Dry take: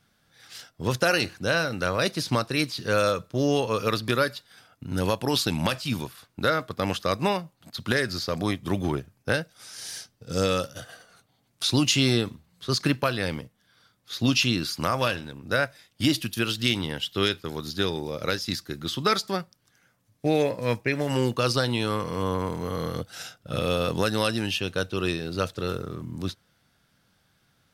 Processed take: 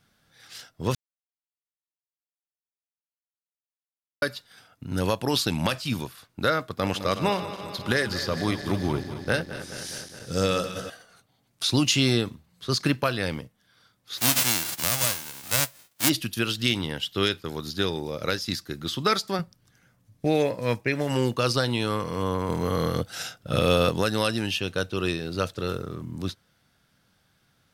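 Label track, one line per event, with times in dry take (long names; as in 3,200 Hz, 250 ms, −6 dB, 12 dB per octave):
0.950000	4.220000	silence
6.730000	10.900000	feedback delay that plays each chunk backwards 105 ms, feedback 83%, level −12 dB
14.170000	16.080000	spectral envelope flattened exponent 0.1
19.390000	20.250000	low-shelf EQ 230 Hz +11 dB
22.490000	23.900000	clip gain +4.5 dB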